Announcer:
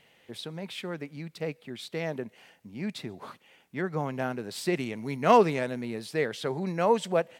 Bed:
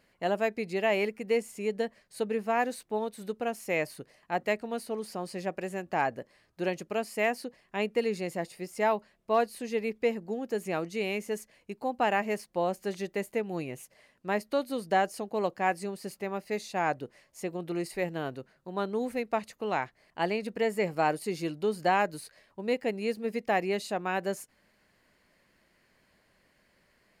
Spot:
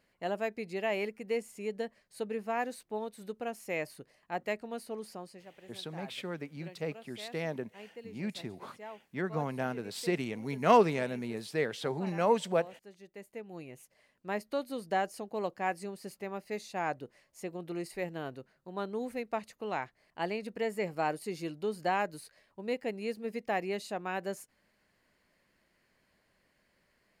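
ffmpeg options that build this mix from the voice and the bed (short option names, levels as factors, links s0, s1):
-filter_complex "[0:a]adelay=5400,volume=0.708[s0];[1:a]volume=2.82,afade=t=out:st=5.07:d=0.37:silence=0.199526,afade=t=in:st=13:d=1.4:silence=0.188365[s1];[s0][s1]amix=inputs=2:normalize=0"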